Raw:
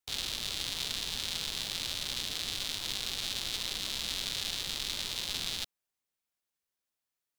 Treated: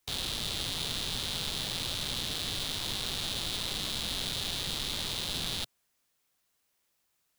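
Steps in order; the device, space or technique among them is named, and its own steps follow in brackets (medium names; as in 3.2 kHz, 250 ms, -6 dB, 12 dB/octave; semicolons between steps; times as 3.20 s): open-reel tape (saturation -29.5 dBFS, distortion -7 dB; peaking EQ 130 Hz +4 dB 1.13 oct; white noise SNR 42 dB); trim +6 dB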